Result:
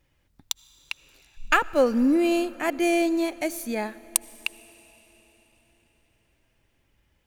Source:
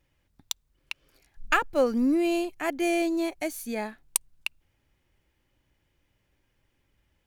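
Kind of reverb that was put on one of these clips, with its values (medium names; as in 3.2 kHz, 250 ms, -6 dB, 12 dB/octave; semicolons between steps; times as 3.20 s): algorithmic reverb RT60 4.6 s, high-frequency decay 0.95×, pre-delay 40 ms, DRR 19 dB; trim +3 dB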